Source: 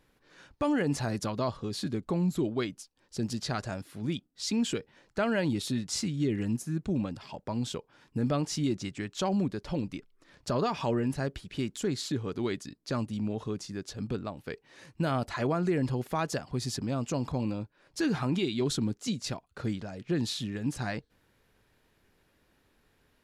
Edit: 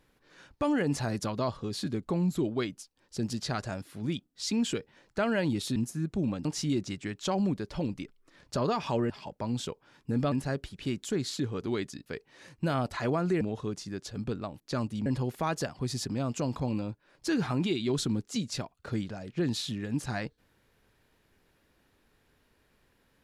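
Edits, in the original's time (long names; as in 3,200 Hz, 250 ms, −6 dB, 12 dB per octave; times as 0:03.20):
0:05.76–0:06.48: remove
0:07.17–0:08.39: move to 0:11.04
0:12.78–0:13.24: swap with 0:14.43–0:15.78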